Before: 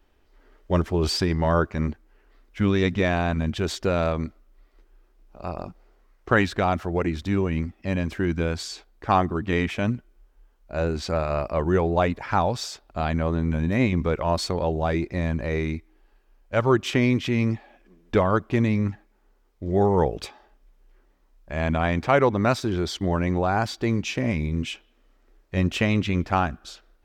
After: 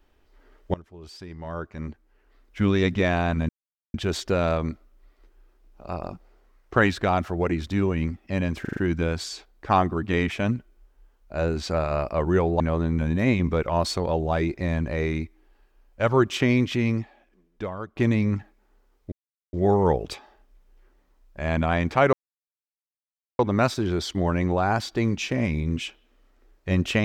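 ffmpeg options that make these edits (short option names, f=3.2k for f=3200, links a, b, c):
-filter_complex "[0:a]asplit=11[a][b][c][d][e][f][g][h][i][j][k];[a]atrim=end=0.74,asetpts=PTS-STARTPTS,afade=t=out:st=0.736:d=0.004:c=hsin:silence=0.0707946[l];[b]atrim=start=0.74:end=3.49,asetpts=PTS-STARTPTS,afade=t=in:d=1.89:c=qua:silence=0.0707946,afade=t=out:st=2.746:d=0.004:c=hsin,apad=pad_dur=0.45[m];[c]atrim=start=3.49:end=8.202,asetpts=PTS-STARTPTS,afade=t=in:d=0.004:c=hsin[n];[d]atrim=start=8.158:end=8.202[o];[e]atrim=start=8.158:end=8.202[p];[f]atrim=start=8.158:end=8.202[q];[g]atrim=start=8.158:end=11.992[r];[h]atrim=start=13.128:end=18.49,asetpts=PTS-STARTPTS,afade=t=out:st=4.192:d=1.17:c=qua:silence=0.211349[s];[i]atrim=start=18.49:end=19.65,asetpts=PTS-STARTPTS,afade=t=in:d=0.004:c=hsin:silence=0.211349,afade=t=out:st=1.156:d=0.004:c=hsin,apad=pad_dur=0.41[t];[j]atrim=start=19.65:end=22.25,asetpts=PTS-STARTPTS,afade=t=in:d=0.004:c=hsin,afade=t=out:st=2.596:d=0.004:c=hsin,apad=pad_dur=1.26[u];[k]atrim=start=22.25,asetpts=PTS-STARTPTS,afade=t=in:d=0.004:c=hsin[v];[l][m][n]concat=n=3:v=0:a=1[w];[w][o]acrossfade=d=0.004:c1=hsin:c2=hsin[x];[x][p]acrossfade=d=0.004:c1=hsin:c2=hsin[y];[y][q]acrossfade=d=0.004:c1=hsin:c2=hsin[z];[z][r]acrossfade=d=0.004:c1=hsin:c2=hsin[aa];[s][t][u][v]concat=n=4:v=0:a=1[ab];[aa][ab]acrossfade=d=0.004:c1=hsin:c2=hsin"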